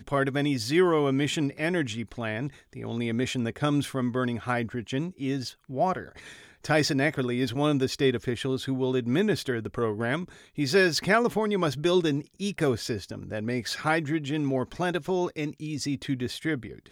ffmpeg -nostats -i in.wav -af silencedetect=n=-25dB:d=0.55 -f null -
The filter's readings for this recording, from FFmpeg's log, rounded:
silence_start: 5.99
silence_end: 6.69 | silence_duration: 0.70